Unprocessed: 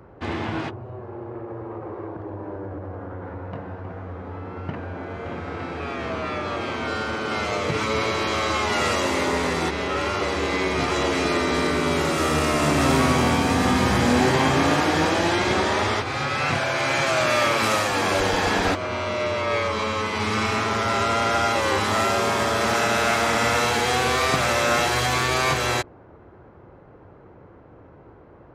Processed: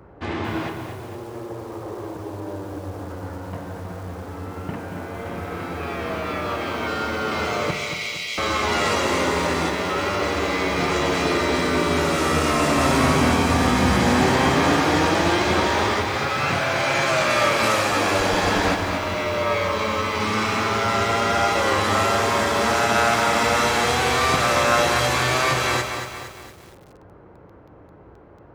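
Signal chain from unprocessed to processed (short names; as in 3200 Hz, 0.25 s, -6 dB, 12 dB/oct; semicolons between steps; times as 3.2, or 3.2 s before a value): 7.71–8.38 brick-wall FIR high-pass 1900 Hz; on a send at -8.5 dB: reverb RT60 1.3 s, pre-delay 8 ms; on the sum: lo-fi delay 0.231 s, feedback 55%, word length 7-bit, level -7 dB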